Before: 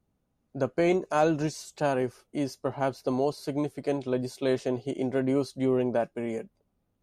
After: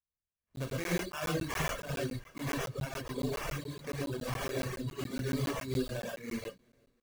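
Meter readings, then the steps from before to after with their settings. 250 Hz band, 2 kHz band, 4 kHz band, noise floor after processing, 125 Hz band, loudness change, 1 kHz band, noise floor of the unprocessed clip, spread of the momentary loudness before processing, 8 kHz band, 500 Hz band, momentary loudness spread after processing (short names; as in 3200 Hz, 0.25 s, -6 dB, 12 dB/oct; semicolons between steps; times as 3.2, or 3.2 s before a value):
-9.0 dB, -1.0 dB, +1.0 dB, under -85 dBFS, -1.5 dB, -7.5 dB, -9.0 dB, -76 dBFS, 8 LU, +1.5 dB, -11.0 dB, 6 LU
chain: AGC gain up to 11.5 dB; spectral noise reduction 20 dB; high shelf 4100 Hz +11 dB; in parallel at -2 dB: limiter -9.5 dBFS, peak gain reduction 7.5 dB; on the sum: passive tone stack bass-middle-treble 6-0-2; notches 50/100/150/200/250/300/350/400 Hz; on a send: feedback echo 0.352 s, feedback 55%, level -22.5 dB; on the sum: sample-rate reducer 4200 Hz, jitter 20%; comb 1.8 ms, depth 38%; non-linear reverb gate 0.15 s rising, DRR -3.5 dB; reverb removal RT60 1.6 s; crackling interface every 0.14 s, samples 512, zero, from 0.42; gain -2 dB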